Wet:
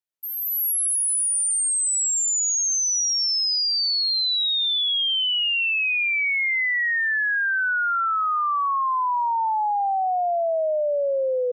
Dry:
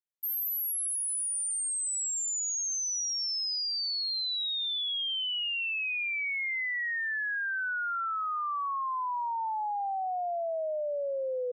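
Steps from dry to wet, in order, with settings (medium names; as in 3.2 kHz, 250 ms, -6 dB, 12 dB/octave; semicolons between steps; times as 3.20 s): level rider gain up to 9.5 dB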